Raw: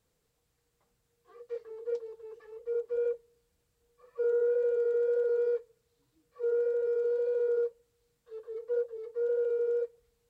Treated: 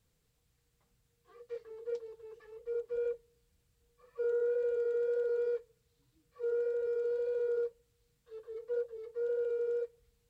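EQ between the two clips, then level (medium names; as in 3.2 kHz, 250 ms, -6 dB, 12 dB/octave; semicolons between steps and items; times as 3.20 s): tone controls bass +10 dB, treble -6 dB; treble shelf 2.1 kHz +11.5 dB; -5.5 dB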